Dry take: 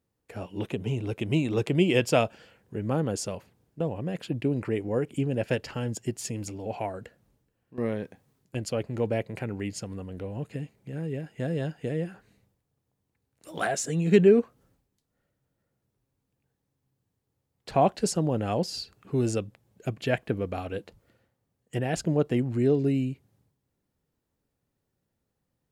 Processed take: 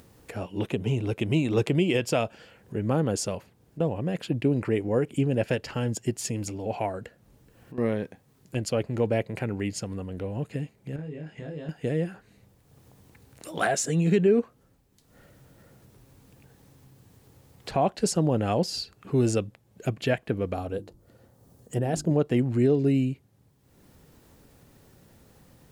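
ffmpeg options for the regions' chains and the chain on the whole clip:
-filter_complex "[0:a]asettb=1/sr,asplit=3[a][b][c];[a]atrim=end=10.964[d];[b]atrim=start=10.96:end=11.69,asetpts=PTS-STARTPTS,afade=t=in:d=0.004:c=qsin,afade=t=out:st=0.726:d=0.004:c=qsin,lowpass=5.6k,acompressor=threshold=-42dB:ratio=3:attack=3.2:release=140:knee=1:detection=peak,asplit=2[e][f];[f]adelay=26,volume=-2dB[g];[e][g]amix=inputs=2:normalize=0,atrim=end_sample=32193[h];[c]atrim=start=11.686[i];[d][h]acrossfade=d=0.004:c1=hsin:c2=qsin[j];[j][i]acrossfade=d=0.004:c1=qsin:c2=hsin,asettb=1/sr,asplit=3[k][l][m];[k]atrim=end=20.544[n];[l]atrim=start=20.54:end=22.11,asetpts=PTS-STARTPTS,afade=t=in:d=0.004:c=qsin,afade=t=out:st=1.566:d=0.004:c=qsin,equalizer=f=2.3k:w=0.85:g=-11,bandreject=f=50:t=h:w=6,bandreject=f=100:t=h:w=6,bandreject=f=150:t=h:w=6,bandreject=f=200:t=h:w=6,bandreject=f=250:t=h:w=6,bandreject=f=300:t=h:w=6,bandreject=f=350:t=h:w=6[o];[m]atrim=start=22.106[p];[n][o]acrossfade=d=0.004:c1=hsin:c2=qsin[q];[q][p]acrossfade=d=0.004:c1=qsin:c2=hsin,alimiter=limit=-15.5dB:level=0:latency=1:release=236,acompressor=mode=upward:threshold=-40dB:ratio=2.5,volume=3dB"

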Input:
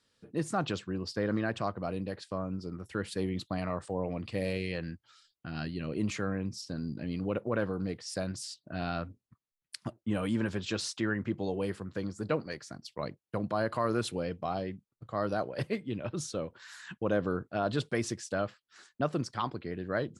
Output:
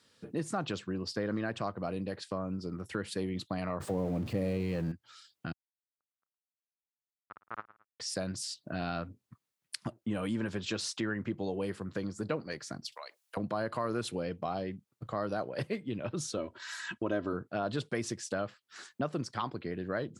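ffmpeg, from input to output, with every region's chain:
-filter_complex "[0:a]asettb=1/sr,asplit=3[a][b][c];[a]atrim=end=3.804[d];[b]atrim=start=3.8:end=4.92,asetpts=PTS-STARTPTS,afade=t=in:d=0.004:c=qsin,afade=t=out:st=1.116:d=0.004:c=qsin,aeval=exprs='val(0)+0.5*0.0112*sgn(val(0))':c=same,tiltshelf=f=720:g=6.5[e];[c]atrim=start=4.916[f];[d][e]acrossfade=d=0.004:c1=hsin:c2=qsin[g];[g][f]acrossfade=d=0.004:c1=qsin:c2=hsin,asettb=1/sr,asplit=3[h][i][j];[h]atrim=end=5.524[k];[i]atrim=start=5.52:end=8,asetpts=PTS-STARTPTS,afade=t=in:d=0.004:c=qsin,afade=t=out:st=2.476:d=0.004:c=qsin,acrusher=bits=2:mix=0:aa=0.5,lowpass=f=1.3k:t=q:w=5.2,aecho=1:1:110|220:0.1|0.031,atrim=end_sample=109368[l];[j]atrim=start=7.996[m];[k][l]acrossfade=d=0.004:c1=hsin:c2=qsin[n];[n][m]acrossfade=d=0.004:c1=qsin:c2=hsin,asettb=1/sr,asplit=3[o][p][q];[o]atrim=end=12.924[r];[p]atrim=start=12.92:end=13.37,asetpts=PTS-STARTPTS,afade=t=in:d=0.004:c=qsin,afade=t=out:st=0.446:d=0.004:c=qsin,highpass=f=640:w=0.5412,highpass=f=640:w=1.3066,highshelf=f=2.6k:g=10.5,acompressor=threshold=-52dB:ratio=3:attack=3.2:release=140:knee=1:detection=peak[s];[q]atrim=start=13.366[t];[r][s]acrossfade=d=0.004:c1=hsin:c2=qsin[u];[u][t]acrossfade=d=0.004:c1=qsin:c2=hsin,asettb=1/sr,asplit=3[v][w][x];[v]atrim=end=16.374[y];[w]atrim=start=16.37:end=17.33,asetpts=PTS-STARTPTS,afade=t=in:d=0.004:c=qsin,afade=t=out:st=0.956:d=0.004:c=qsin,lowpass=10k,aecho=1:1:3.1:0.7,atrim=end_sample=42336[z];[x]atrim=start=17.326[aa];[y][z]acrossfade=d=0.004:c1=hsin:c2=qsin[ab];[ab][aa]acrossfade=d=0.004:c1=qsin:c2=hsin,highpass=89,acompressor=threshold=-45dB:ratio=2,volume=7dB"

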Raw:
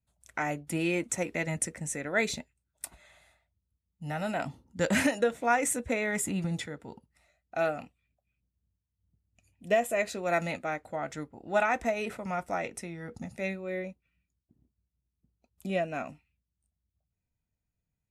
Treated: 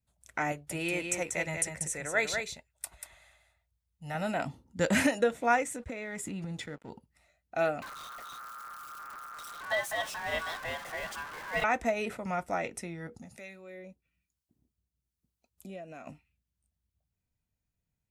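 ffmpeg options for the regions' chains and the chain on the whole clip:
-filter_complex "[0:a]asettb=1/sr,asplit=3[a][b][c];[a]atrim=end=0.524[d];[b]atrim=start=0.52:end=4.15,asetpts=PTS-STARTPTS,afade=t=in:d=0.004:c=qsin,afade=t=out:st=3.626:d=0.004:c=qsin,equalizer=f=240:w=1.3:g=-12,aecho=1:1:189:0.531,atrim=end_sample=160083[e];[c]atrim=start=4.146[f];[d][e]acrossfade=d=0.004:c1=hsin:c2=qsin[g];[g][f]acrossfade=d=0.004:c1=qsin:c2=hsin,asettb=1/sr,asplit=3[h][i][j];[h]atrim=end=5.624[k];[i]atrim=start=5.62:end=6.9,asetpts=PTS-STARTPTS,afade=t=in:d=0.004:c=qsin,afade=t=out:st=1.276:d=0.004:c=qsin,aeval=exprs='sgn(val(0))*max(abs(val(0))-0.00158,0)':c=same,highshelf=f=11k:g=-10.5,acompressor=threshold=-34dB:ratio=12:attack=3.2:release=140:knee=1:detection=peak[l];[j]atrim=start=6.896[m];[k][l]acrossfade=d=0.004:c1=hsin:c2=qsin[n];[n][m]acrossfade=d=0.004:c1=qsin:c2=hsin,asettb=1/sr,asplit=3[o][p][q];[o]atrim=end=7.824[r];[p]atrim=start=7.82:end=11.64,asetpts=PTS-STARTPTS,afade=t=in:d=0.004:c=qsin,afade=t=out:st=3.816:d=0.004:c=qsin,aeval=exprs='val(0)+0.5*0.0282*sgn(val(0))':c=same,aeval=exprs='val(0)*sin(2*PI*1300*n/s)':c=same,flanger=delay=1:depth=5.9:regen=-77:speed=1:shape=sinusoidal[s];[q]atrim=start=11.636[t];[r][s]acrossfade=d=0.004:c1=hsin:c2=qsin[u];[u][t]acrossfade=d=0.004:c1=qsin:c2=hsin,asettb=1/sr,asplit=3[v][w][x];[v]atrim=end=13.074[y];[w]atrim=start=13.07:end=16.07,asetpts=PTS-STARTPTS,afade=t=in:d=0.004:c=qsin,afade=t=out:st=2.996:d=0.004:c=qsin,bass=f=250:g=-3,treble=f=4k:g=5,acompressor=threshold=-44dB:ratio=2.5:attack=3.2:release=140:knee=1:detection=peak,acrossover=split=730[z][aa];[z]aeval=exprs='val(0)*(1-0.5/2+0.5/2*cos(2*PI*1.1*n/s))':c=same[ab];[aa]aeval=exprs='val(0)*(1-0.5/2-0.5/2*cos(2*PI*1.1*n/s))':c=same[ac];[ab][ac]amix=inputs=2:normalize=0[ad];[x]atrim=start=16.066[ae];[y][ad]acrossfade=d=0.004:c1=hsin:c2=qsin[af];[af][ae]acrossfade=d=0.004:c1=qsin:c2=hsin"

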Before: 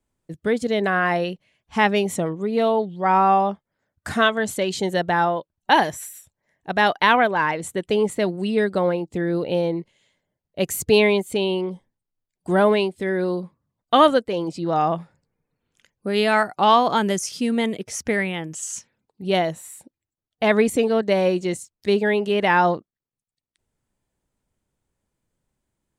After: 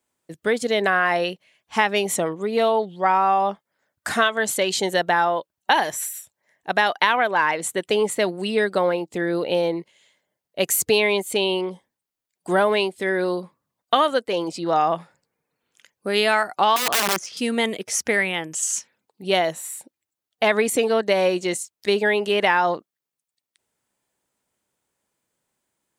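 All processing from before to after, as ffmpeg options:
-filter_complex "[0:a]asettb=1/sr,asplit=3[a][b][c];[a]atrim=end=16.764[d];[b]atrim=start=16.76:end=17.37,asetpts=PTS-STARTPTS,afade=t=in:d=0.004:c=qsin,afade=t=out:st=0.606:d=0.004:c=qsin,adynamicsmooth=sensitivity=0.5:basefreq=3.1k,aeval=exprs='(mod(7.08*val(0)+1,2)-1)/7.08':c=same[e];[c]atrim=start=17.366[f];[d][e]acrossfade=d=0.004:c1=hsin:c2=qsin[g];[g][f]acrossfade=d=0.004:c1=qsin:c2=hsin,highpass=f=600:p=1,highshelf=f=9.8k:g=3.5,acompressor=threshold=-20dB:ratio=6,volume=5.5dB"

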